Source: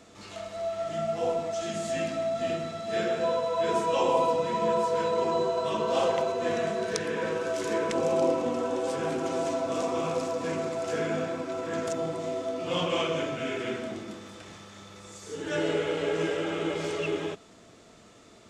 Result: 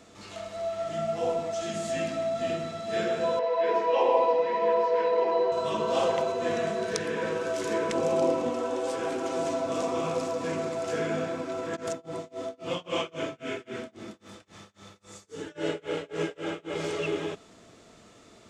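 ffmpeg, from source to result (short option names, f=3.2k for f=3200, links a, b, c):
-filter_complex "[0:a]asettb=1/sr,asplit=3[a][b][c];[a]atrim=end=3.394[d];[b]atrim=start=3.39:end=5.52,asetpts=PTS-STARTPTS,afade=t=in:d=0.004:c=qsin,afade=t=out:st=2.126:d=0.004:c=qsin,highpass=370,equalizer=f=470:t=q:w=4:g=5,equalizer=f=830:t=q:w=4:g=5,equalizer=f=1.3k:t=q:w=4:g=-7,equalizer=f=1.9k:t=q:w=4:g=6,equalizer=f=3.5k:t=q:w=4:g=-7,lowpass=f=4.5k:w=0.5412,lowpass=f=4.5k:w=1.3066[e];[c]atrim=start=5.516[f];[d][e]acrossfade=d=0.004:c1=hsin:c2=qsin[g];[g][f]acrossfade=d=0.004:c1=qsin:c2=hsin,asettb=1/sr,asplit=3[h][i][j];[h]atrim=end=8.504[k];[i]atrim=start=8.5:end=9.37,asetpts=PTS-STARTPTS,afade=t=in:d=0.004:c=qsin,afade=t=out:st=0.866:d=0.004:c=qsin,equalizer=f=150:t=o:w=0.77:g=-12[l];[j]atrim=start=9.366[m];[k][l]acrossfade=d=0.004:c1=hsin:c2=qsin[n];[n][m]acrossfade=d=0.004:c1=qsin:c2=hsin,asplit=3[o][p][q];[o]afade=t=out:st=11.75:d=0.02[r];[p]tremolo=f=3.7:d=0.98,afade=t=in:st=11.75:d=0.02,afade=t=out:st=16.77:d=0.02[s];[q]afade=t=in:st=16.77:d=0.02[t];[r][s][t]amix=inputs=3:normalize=0"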